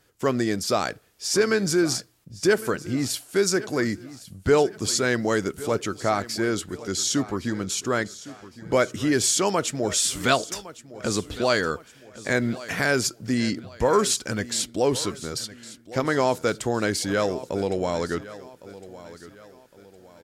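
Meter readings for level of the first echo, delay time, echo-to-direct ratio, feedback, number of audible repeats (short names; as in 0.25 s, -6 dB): -17.0 dB, 1.11 s, -16.5 dB, 40%, 3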